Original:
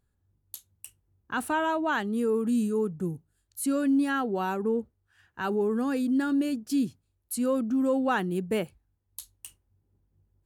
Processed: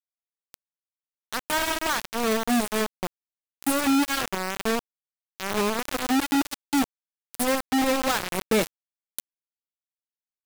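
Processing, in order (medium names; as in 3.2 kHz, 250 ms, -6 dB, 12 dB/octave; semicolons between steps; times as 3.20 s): 8.41–9.32 s: power-law waveshaper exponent 0.5; feedback echo behind a high-pass 81 ms, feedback 41%, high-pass 1.4 kHz, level -6 dB; bit crusher 4-bit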